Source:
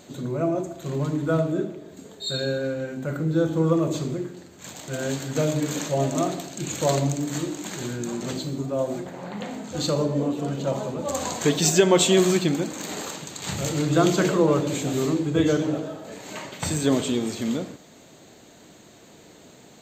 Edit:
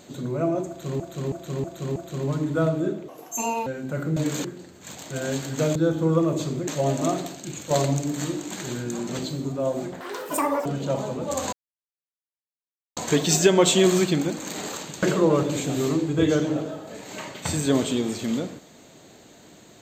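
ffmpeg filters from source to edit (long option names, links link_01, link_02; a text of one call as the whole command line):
ffmpeg -i in.wav -filter_complex "[0:a]asplit=16[link_01][link_02][link_03][link_04][link_05][link_06][link_07][link_08][link_09][link_10][link_11][link_12][link_13][link_14][link_15][link_16];[link_01]atrim=end=1.002[link_17];[link_02]atrim=start=0.678:end=1.002[link_18];[link_03]atrim=start=0.678:end=1.002[link_19];[link_04]atrim=start=0.678:end=1.002[link_20];[link_05]atrim=start=0.678:end=1.804[link_21];[link_06]atrim=start=1.8:end=2.8,asetpts=PTS-STARTPTS,asetrate=75411,aresample=44100,atrim=end_sample=25789,asetpts=PTS-STARTPTS[link_22];[link_07]atrim=start=2.796:end=3.302[link_23];[link_08]atrim=start=5.528:end=5.812[link_24];[link_09]atrim=start=4.218:end=5.532[link_25];[link_10]atrim=start=3.298:end=4.222[link_26];[link_11]atrim=start=5.808:end=6.84,asetpts=PTS-STARTPTS,afade=type=out:start_time=0.572:duration=0.46:silence=0.334965[link_27];[link_12]atrim=start=6.84:end=9.144,asetpts=PTS-STARTPTS,afade=type=in:duration=0.004:curve=hsin:silence=0.334965[link_28];[link_13]atrim=start=9.14:end=10.43,asetpts=PTS-STARTPTS,asetrate=87318,aresample=44100[link_29];[link_14]atrim=start=10.426:end=11.3,asetpts=PTS-STARTPTS,afade=type=out:start_time=0.87:duration=0.004:curve=hsin,apad=pad_dur=1.44[link_30];[link_15]atrim=start=11.3:end=13.362,asetpts=PTS-STARTPTS,afade=type=in:duration=0.004:curve=hsin[link_31];[link_16]atrim=start=14.198[link_32];[link_17][link_18]acrossfade=duration=0.004:curve1=hsin:curve2=hsin[link_33];[link_33][link_19]acrossfade=duration=0.004:curve1=hsin:curve2=hsin[link_34];[link_34][link_20]acrossfade=duration=0.004:curve1=hsin:curve2=hsin[link_35];[link_35][link_21]acrossfade=duration=0.004:curve1=hsin:curve2=hsin[link_36];[link_36][link_22]acrossfade=duration=0.004:curve1=hsin:curve2=hsin[link_37];[link_37][link_23]acrossfade=duration=0.004:curve1=hsin:curve2=hsin[link_38];[link_38][link_24]acrossfade=duration=0.004:curve1=hsin:curve2=hsin[link_39];[link_39][link_25]acrossfade=duration=0.004:curve1=hsin:curve2=hsin[link_40];[link_40][link_26]acrossfade=duration=0.004:curve1=hsin:curve2=hsin[link_41];[link_27][link_28]concat=n=2:v=0:a=1[link_42];[link_41][link_42]acrossfade=duration=0.004:curve1=hsin:curve2=hsin[link_43];[link_43][link_29]acrossfade=duration=0.004:curve1=hsin:curve2=hsin[link_44];[link_30][link_31]concat=n=2:v=0:a=1[link_45];[link_44][link_45]acrossfade=duration=0.004:curve1=hsin:curve2=hsin[link_46];[link_46][link_32]acrossfade=duration=0.004:curve1=hsin:curve2=hsin" out.wav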